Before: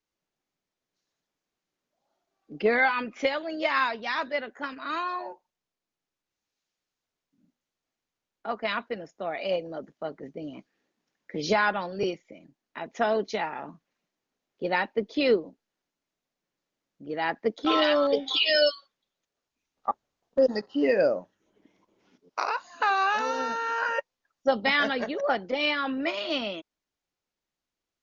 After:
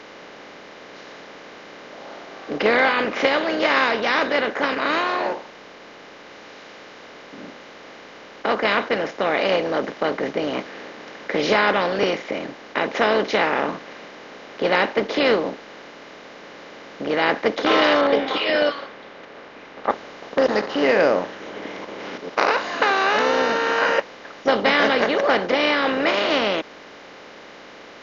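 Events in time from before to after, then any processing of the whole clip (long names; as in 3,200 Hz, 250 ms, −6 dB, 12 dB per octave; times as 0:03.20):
0:18.01–0:19.90: low-pass filter 2,100 Hz
whole clip: compressor on every frequency bin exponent 0.4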